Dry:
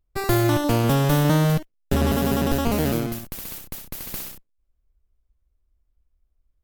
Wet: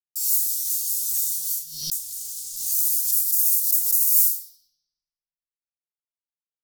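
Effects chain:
0:01.96–0:02.66: spectral tilt −3.5 dB per octave
flanger 1.2 Hz, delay 1.4 ms, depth 8.1 ms, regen +68%
fuzz pedal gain 37 dB, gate −40 dBFS
inverse Chebyshev high-pass filter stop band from 2,100 Hz, stop band 60 dB
comb filter 5.8 ms, depth 30%
convolution reverb RT60 1.2 s, pre-delay 4 ms, DRR −3.5 dB
regular buffer underruns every 0.22 s, samples 64, repeat, from 0:00.95
background raised ahead of every attack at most 60 dB per second

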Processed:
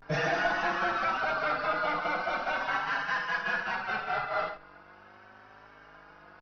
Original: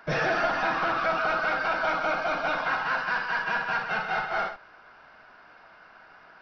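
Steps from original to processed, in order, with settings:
hum with harmonics 50 Hz, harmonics 27, −55 dBFS 0 dB per octave
pitch vibrato 0.4 Hz 85 cents
barber-pole flanger 4.6 ms +0.7 Hz

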